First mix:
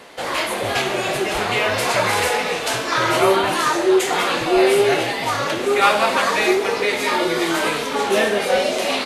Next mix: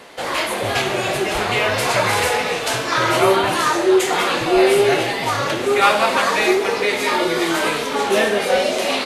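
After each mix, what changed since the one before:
reverb: on, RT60 2.7 s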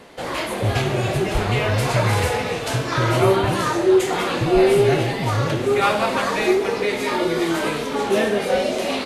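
background −6.0 dB
master: add low-shelf EQ 370 Hz +11 dB

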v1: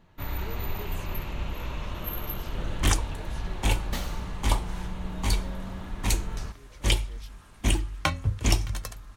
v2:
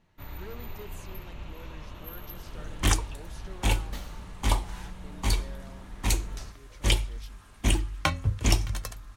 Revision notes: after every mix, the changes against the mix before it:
first sound −8.5 dB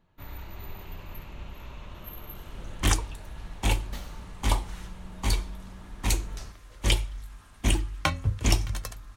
speech: muted

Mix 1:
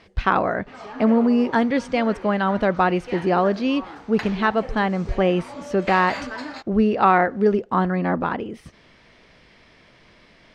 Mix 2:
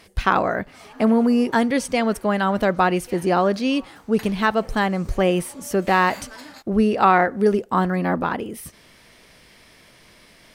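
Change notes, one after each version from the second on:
background −9.5 dB
master: remove high-frequency loss of the air 150 metres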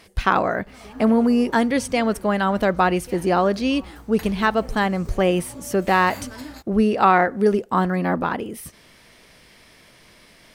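background: remove meter weighting curve A

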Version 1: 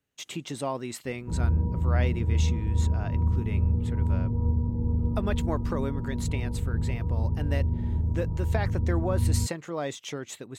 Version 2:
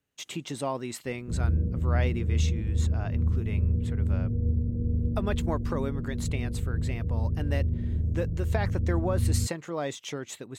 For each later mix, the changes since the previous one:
background: add Butterworth low-pass 660 Hz 72 dB per octave
reverb: off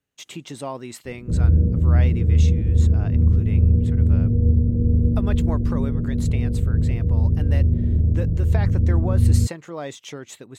background +9.5 dB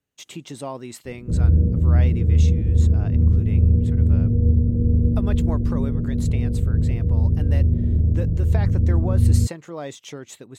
speech: add parametric band 1,800 Hz −2.5 dB 2.2 octaves

